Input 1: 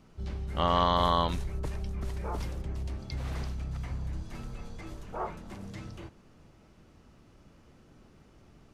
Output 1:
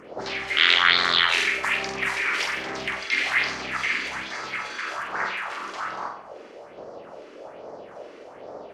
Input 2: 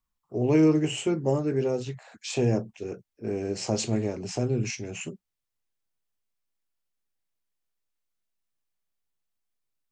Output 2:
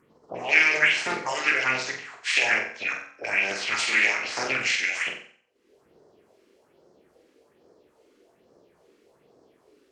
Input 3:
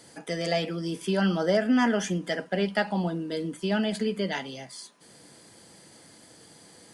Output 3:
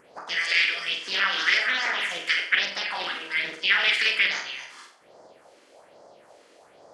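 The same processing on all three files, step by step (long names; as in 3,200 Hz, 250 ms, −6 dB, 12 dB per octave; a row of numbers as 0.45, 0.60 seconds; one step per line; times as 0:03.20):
ceiling on every frequency bin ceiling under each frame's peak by 24 dB
notch filter 3,700 Hz, Q 25
brickwall limiter −17 dBFS
upward compression, threshold −44 dBFS
envelope filter 380–2,100 Hz, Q 2.8, up, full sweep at −35 dBFS
all-pass phaser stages 4, 1.2 Hz, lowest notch 110–2,800 Hz
hum removal 47.35 Hz, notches 34
on a send: flutter between parallel walls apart 7.9 metres, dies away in 0.5 s
on the sum: highs frequency-modulated by the lows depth 0.23 ms
loudness normalisation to −23 LKFS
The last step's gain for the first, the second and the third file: +22.0, +19.0, +14.5 decibels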